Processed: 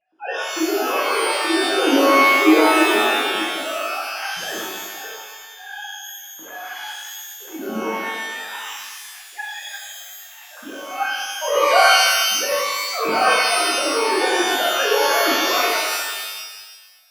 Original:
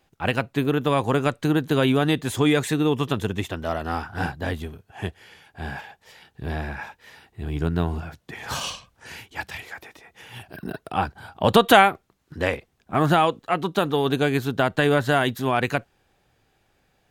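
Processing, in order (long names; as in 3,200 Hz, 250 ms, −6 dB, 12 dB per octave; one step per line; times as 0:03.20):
three sine waves on the formant tracks
reverb with rising layers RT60 1.3 s, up +12 semitones, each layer −2 dB, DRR −6.5 dB
level −7 dB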